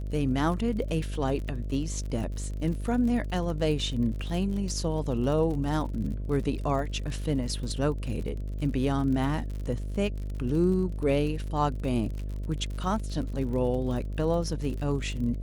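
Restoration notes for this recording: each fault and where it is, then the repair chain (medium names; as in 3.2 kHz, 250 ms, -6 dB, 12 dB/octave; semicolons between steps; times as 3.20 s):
buzz 50 Hz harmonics 13 -33 dBFS
crackle 47 per s -35 dBFS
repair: de-click; de-hum 50 Hz, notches 13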